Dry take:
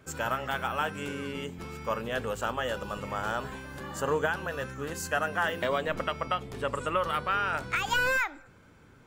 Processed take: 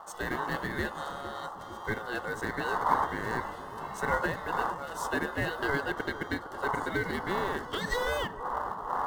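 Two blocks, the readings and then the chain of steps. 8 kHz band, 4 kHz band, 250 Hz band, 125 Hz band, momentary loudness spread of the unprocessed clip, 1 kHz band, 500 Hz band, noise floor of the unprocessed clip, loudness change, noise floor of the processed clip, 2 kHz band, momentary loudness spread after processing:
-4.5 dB, -3.5 dB, +2.0 dB, -1.0 dB, 8 LU, +0.5 dB, -2.5 dB, -56 dBFS, -1.5 dB, -43 dBFS, -2.0 dB, 8 LU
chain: wind noise 190 Hz -32 dBFS; dynamic bell 780 Hz, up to +6 dB, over -41 dBFS, Q 1; in parallel at -10 dB: companded quantiser 4-bit; on the sum: ring modulator 980 Hz; Butterworth band-stop 2.4 kHz, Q 3.3; on a send: bucket-brigade echo 459 ms, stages 4096, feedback 66%, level -12 dB; on the sum: trim -5 dB

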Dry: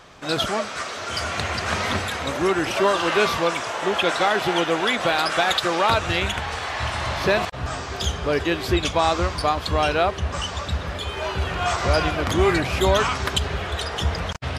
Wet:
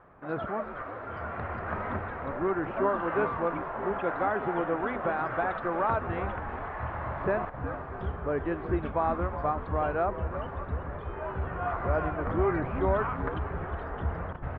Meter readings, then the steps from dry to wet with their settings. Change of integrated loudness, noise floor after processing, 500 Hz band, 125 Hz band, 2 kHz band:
-9.0 dB, -40 dBFS, -7.0 dB, -7.0 dB, -12.0 dB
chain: low-pass 1.6 kHz 24 dB/octave; on a send: frequency-shifting echo 365 ms, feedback 49%, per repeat -110 Hz, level -11 dB; on the sum: trim -7.5 dB

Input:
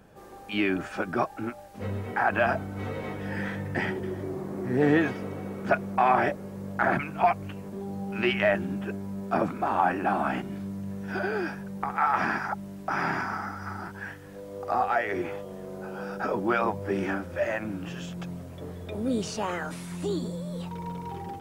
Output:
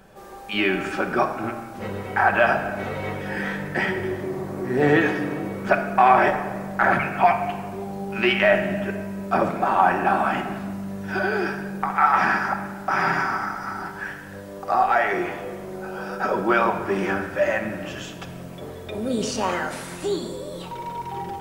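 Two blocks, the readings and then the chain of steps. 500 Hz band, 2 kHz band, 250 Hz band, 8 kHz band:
+5.5 dB, +7.0 dB, +3.0 dB, no reading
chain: peaking EQ 160 Hz -6 dB 2.7 oct; simulated room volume 1800 m³, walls mixed, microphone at 1.1 m; trim +6 dB

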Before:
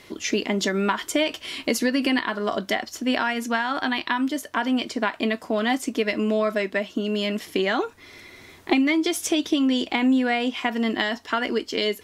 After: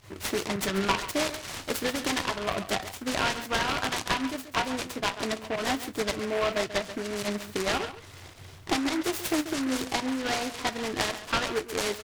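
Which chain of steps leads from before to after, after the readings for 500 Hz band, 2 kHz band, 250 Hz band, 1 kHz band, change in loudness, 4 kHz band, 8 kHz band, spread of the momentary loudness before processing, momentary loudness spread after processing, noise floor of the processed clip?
-5.0 dB, -5.0 dB, -9.0 dB, -3.0 dB, -5.0 dB, -3.0 dB, 0.0 dB, 5 LU, 5 LU, -47 dBFS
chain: peaking EQ 1.2 kHz +3.5 dB; volume shaper 108 bpm, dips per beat 1, -15 dB, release 65 ms; resonant low shelf 170 Hz +9 dB, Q 3; flange 1.5 Hz, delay 9.3 ms, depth 2.7 ms, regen +58%; on a send: delay 137 ms -12.5 dB; on the sum: delay time shaken by noise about 1.4 kHz, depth 0.11 ms

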